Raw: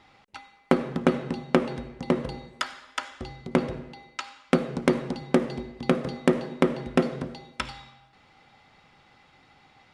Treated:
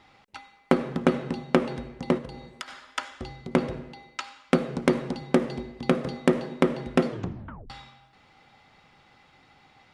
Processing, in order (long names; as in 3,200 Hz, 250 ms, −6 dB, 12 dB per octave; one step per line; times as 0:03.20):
0:02.17–0:02.68: downward compressor 12 to 1, threshold −34 dBFS, peak gain reduction 12.5 dB
0:07.07: tape stop 0.63 s